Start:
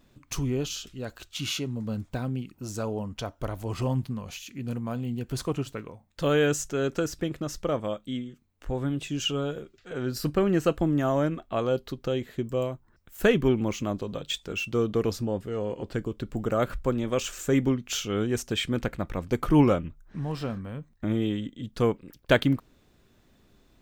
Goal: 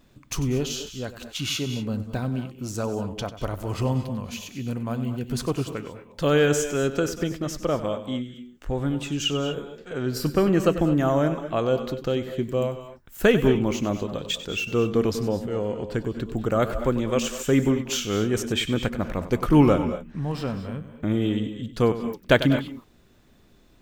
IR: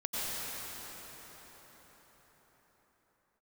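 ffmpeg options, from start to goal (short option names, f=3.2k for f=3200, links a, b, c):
-filter_complex "[0:a]asplit=2[a][b];[1:a]atrim=start_sample=2205,afade=t=out:st=0.2:d=0.01,atrim=end_sample=9261,adelay=96[c];[b][c]afir=irnorm=-1:irlink=0,volume=-10.5dB[d];[a][d]amix=inputs=2:normalize=0,volume=3dB"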